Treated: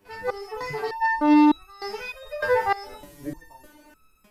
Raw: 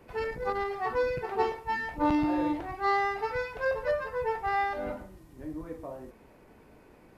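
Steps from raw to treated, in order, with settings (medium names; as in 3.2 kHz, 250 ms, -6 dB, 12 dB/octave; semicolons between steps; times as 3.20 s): treble shelf 2.9 kHz +11 dB; level rider gain up to 15.5 dB; peak limiter -11 dBFS, peak gain reduction 8.5 dB; time stretch by phase-locked vocoder 0.6×; resonator arpeggio 3.3 Hz 100–1300 Hz; trim +4 dB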